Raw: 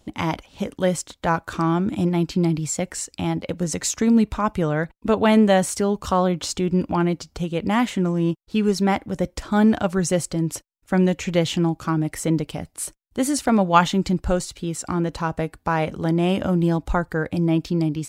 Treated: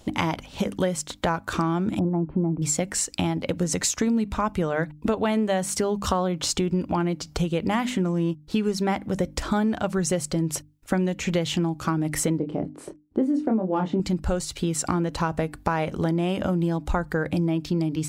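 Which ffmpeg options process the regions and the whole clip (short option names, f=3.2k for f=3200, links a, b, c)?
-filter_complex "[0:a]asettb=1/sr,asplit=3[a][b][c];[a]atrim=end=1.994[d];[b]atrim=start=1.99:end=2.62,asetpts=PTS-STARTPTS,afade=t=in:d=0.004:c=qsin,afade=t=out:st=0.626:d=0.004:c=qsin,lowpass=f=1.1k:w=0.5412,lowpass=f=1.1k:w=1.3066,acompressor=mode=upward:threshold=-28dB:ratio=2.5:attack=3.2:release=140:knee=2.83:detection=peak[e];[c]atrim=start=2.616[f];[d][e]acrossfade=d=0.004:c1=hsin:c2=qsin[g];[g][f]acrossfade=d=0.004:c1=qsin:c2=hsin,asettb=1/sr,asplit=3[h][i][j];[h]atrim=end=12.384[k];[i]atrim=start=12.38:end=14,asetpts=PTS-STARTPTS,afade=t=in:d=0.004:c=qsin,afade=t=out:st=1.616:d=0.004:c=qsin,acontrast=80,bandpass=f=320:t=q:w=1.7,asplit=2[l][m];[m]adelay=27,volume=-6dB[n];[l][n]amix=inputs=2:normalize=0,atrim=end_sample=71442[o];[j]atrim=start=13.996[p];[k][o]acrossfade=d=0.004:c1=hsin:c2=qsin[q];[q][p]acrossfade=d=0.004:c1=qsin:c2=hsin,bandreject=f=50:t=h:w=6,bandreject=f=100:t=h:w=6,bandreject=f=150:t=h:w=6,bandreject=f=200:t=h:w=6,bandreject=f=250:t=h:w=6,bandreject=f=300:t=h:w=6,acompressor=threshold=-29dB:ratio=6,volume=7.5dB"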